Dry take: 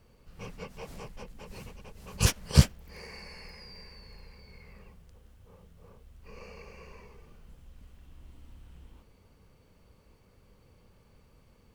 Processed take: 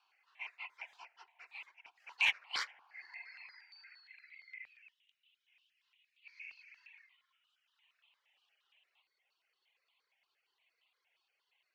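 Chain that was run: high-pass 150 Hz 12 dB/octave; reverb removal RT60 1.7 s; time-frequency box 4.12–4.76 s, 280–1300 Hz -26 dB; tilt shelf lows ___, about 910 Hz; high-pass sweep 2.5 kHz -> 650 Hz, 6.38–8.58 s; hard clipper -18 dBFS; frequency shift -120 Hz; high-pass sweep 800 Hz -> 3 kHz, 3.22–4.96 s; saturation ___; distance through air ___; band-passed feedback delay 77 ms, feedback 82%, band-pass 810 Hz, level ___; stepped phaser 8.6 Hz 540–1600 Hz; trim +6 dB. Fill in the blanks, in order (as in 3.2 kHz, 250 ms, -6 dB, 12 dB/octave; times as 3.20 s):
+3.5 dB, -16 dBFS, 220 m, -19 dB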